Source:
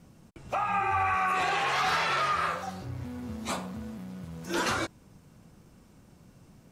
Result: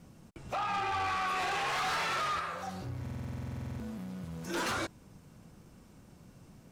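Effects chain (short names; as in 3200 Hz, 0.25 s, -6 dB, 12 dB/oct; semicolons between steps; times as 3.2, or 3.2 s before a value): 2.39–4.54 compressor, threshold -33 dBFS, peak gain reduction 8 dB; soft clip -29.5 dBFS, distortion -10 dB; stuck buffer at 3.01, samples 2048, times 16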